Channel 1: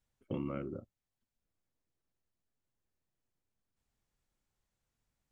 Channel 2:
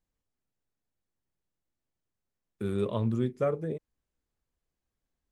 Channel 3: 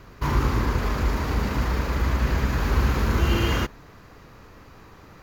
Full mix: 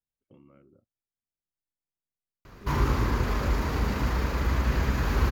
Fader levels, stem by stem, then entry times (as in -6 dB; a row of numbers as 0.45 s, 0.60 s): -18.5 dB, -14.5 dB, -2.5 dB; 0.00 s, 0.00 s, 2.45 s